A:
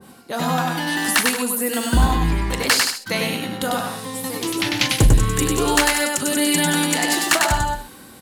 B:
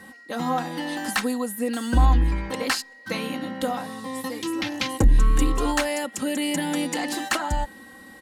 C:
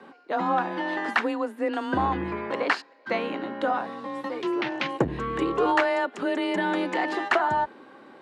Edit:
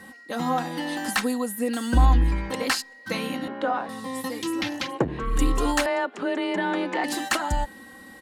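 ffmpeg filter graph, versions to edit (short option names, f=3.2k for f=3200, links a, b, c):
-filter_complex "[2:a]asplit=3[a][b][c];[1:a]asplit=4[d][e][f][g];[d]atrim=end=3.482[h];[a]atrim=start=3.478:end=3.892[i];[e]atrim=start=3.888:end=4.97[j];[b]atrim=start=4.73:end=5.45[k];[f]atrim=start=5.21:end=5.862[l];[c]atrim=start=5.858:end=7.042[m];[g]atrim=start=7.038[n];[h][i]acrossfade=d=0.004:c1=hsin:c2=hsin[o];[o][j]acrossfade=d=0.004:c1=hsin:c2=hsin[p];[p][k]acrossfade=d=0.24:c1=tri:c2=tri[q];[q][l]acrossfade=d=0.24:c1=tri:c2=tri[r];[r][m]acrossfade=d=0.004:c1=hsin:c2=hsin[s];[s][n]acrossfade=d=0.004:c1=hsin:c2=hsin"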